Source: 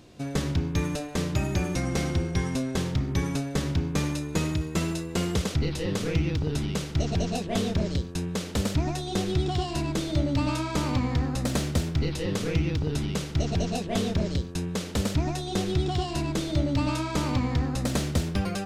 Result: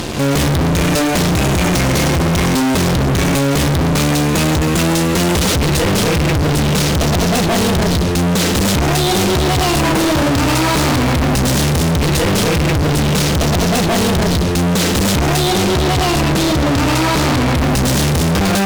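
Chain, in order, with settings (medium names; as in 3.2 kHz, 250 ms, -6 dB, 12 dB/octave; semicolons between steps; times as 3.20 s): 9.83–10.28 s: graphic EQ 250/500/1000 Hz +4/+6/+10 dB; fuzz box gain 49 dB, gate -54 dBFS; 15.50–17.58 s: decimation joined by straight lines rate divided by 2×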